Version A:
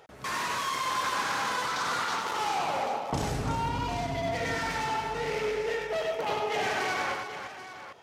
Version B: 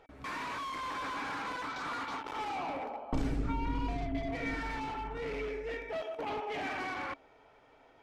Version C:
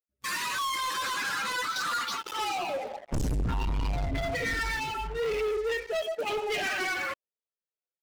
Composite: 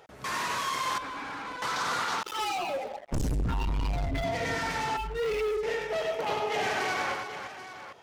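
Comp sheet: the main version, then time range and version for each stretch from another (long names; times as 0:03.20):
A
0:00.98–0:01.62: punch in from B
0:02.23–0:04.24: punch in from C
0:04.97–0:05.63: punch in from C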